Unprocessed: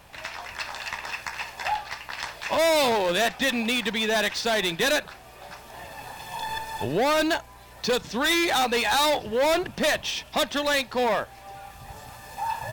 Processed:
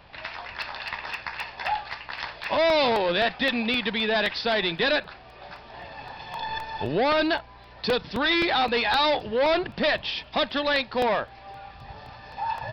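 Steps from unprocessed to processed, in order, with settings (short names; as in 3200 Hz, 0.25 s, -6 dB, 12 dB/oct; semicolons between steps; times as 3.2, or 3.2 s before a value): downsampling 11025 Hz; crackling interface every 0.26 s, samples 64, repeat, from 0.62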